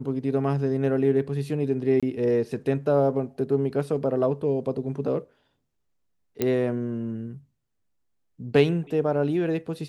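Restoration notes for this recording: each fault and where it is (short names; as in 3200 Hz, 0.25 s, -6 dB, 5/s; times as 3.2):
2–2.03 gap 26 ms
6.42 pop -10 dBFS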